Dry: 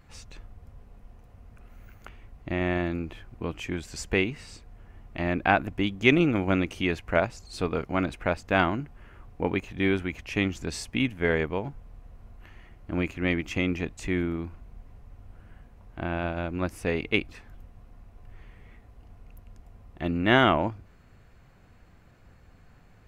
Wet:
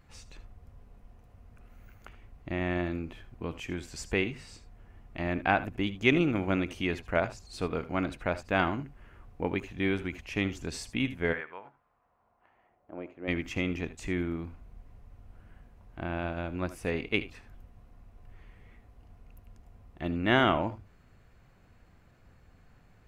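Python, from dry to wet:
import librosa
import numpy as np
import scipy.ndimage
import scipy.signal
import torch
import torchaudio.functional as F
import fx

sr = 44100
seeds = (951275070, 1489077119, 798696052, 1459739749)

y = fx.bandpass_q(x, sr, hz=fx.line((11.32, 1600.0), (13.27, 530.0)), q=1.8, at=(11.32, 13.27), fade=0.02)
y = fx.echo_multitap(y, sr, ms=(71, 79), db=(-19.5, -16.5))
y = y * librosa.db_to_amplitude(-4.0)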